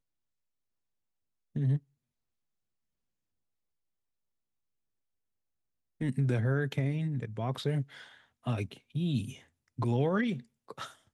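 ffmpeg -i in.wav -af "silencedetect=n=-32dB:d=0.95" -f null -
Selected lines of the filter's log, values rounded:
silence_start: 0.00
silence_end: 1.56 | silence_duration: 1.56
silence_start: 1.77
silence_end: 6.01 | silence_duration: 4.24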